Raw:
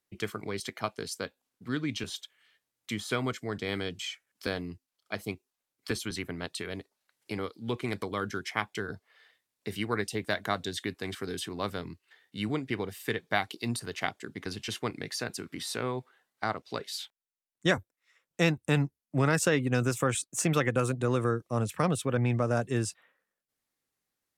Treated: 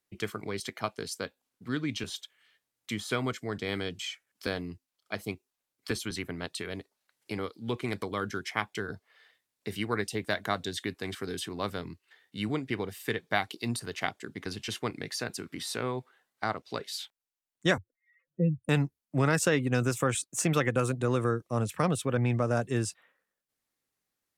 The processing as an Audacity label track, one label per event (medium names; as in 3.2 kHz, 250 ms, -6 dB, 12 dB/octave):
17.780000	18.690000	spectral contrast enhancement exponent 3.8